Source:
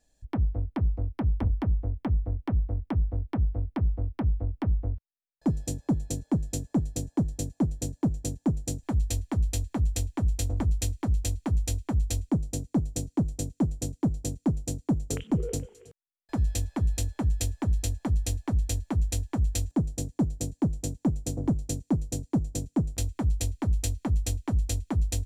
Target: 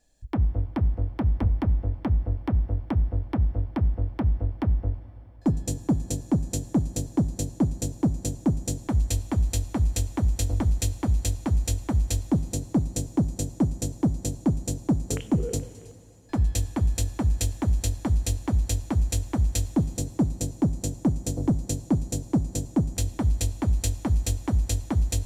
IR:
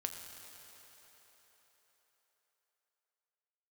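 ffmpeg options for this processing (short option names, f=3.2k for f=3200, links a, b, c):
-filter_complex "[0:a]asplit=2[a][b];[1:a]atrim=start_sample=2205,asetrate=52920,aresample=44100[c];[b][c]afir=irnorm=-1:irlink=0,volume=-5dB[d];[a][d]amix=inputs=2:normalize=0"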